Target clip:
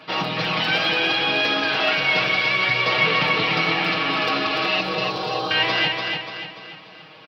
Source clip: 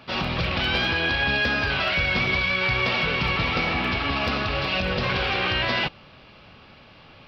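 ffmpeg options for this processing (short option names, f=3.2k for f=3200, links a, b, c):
-filter_complex "[0:a]highpass=230,aecho=1:1:6.4:0.91,aphaser=in_gain=1:out_gain=1:delay=3:decay=0.25:speed=0.32:type=sinusoidal,asettb=1/sr,asplit=3[a][b][c];[a]atrim=end=4.814[d];[b]atrim=start=4.81:end=5.51,asetpts=PTS-STARTPTS,afade=t=in:d=0.004:c=qsin,afade=t=out:st=0.696:d=0.004:c=qsin,asuperstop=centerf=2100:order=4:qfactor=0.68[e];[c]atrim=start=5.506[f];[d][e]acrossfade=d=0.004:c1=hsin:c2=qsin[g];[g][f]acrossfade=d=0.004:c1=qsin:c2=hsin,aecho=1:1:292|584|876|1168|1460:0.596|0.262|0.115|0.0507|0.0223"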